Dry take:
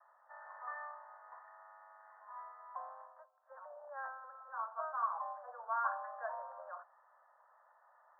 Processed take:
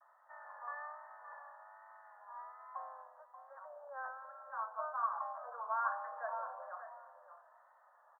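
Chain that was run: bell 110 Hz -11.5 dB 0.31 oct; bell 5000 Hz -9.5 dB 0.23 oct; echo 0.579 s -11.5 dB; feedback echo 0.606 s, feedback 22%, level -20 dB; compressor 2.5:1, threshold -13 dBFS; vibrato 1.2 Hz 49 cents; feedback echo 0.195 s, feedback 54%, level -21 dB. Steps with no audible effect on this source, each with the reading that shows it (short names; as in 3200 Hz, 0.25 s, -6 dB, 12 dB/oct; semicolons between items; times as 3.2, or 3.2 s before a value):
bell 110 Hz: input band starts at 480 Hz; bell 5000 Hz: input band ends at 1800 Hz; compressor, threshold -13 dBFS: input peak -21.5 dBFS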